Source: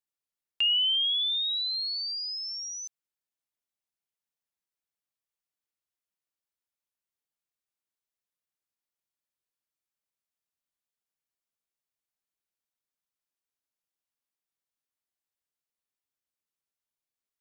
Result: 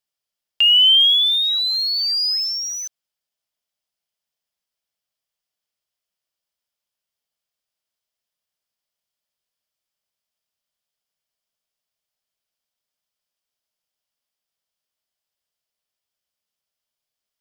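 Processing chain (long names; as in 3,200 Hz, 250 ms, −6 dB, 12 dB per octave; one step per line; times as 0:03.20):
thirty-one-band graphic EQ 315 Hz −7 dB, 630 Hz +6 dB, 3,150 Hz +6 dB, 5,000 Hz +7 dB
in parallel at −11.5 dB: bit-depth reduction 6 bits, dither none
on the sum: level +5 dB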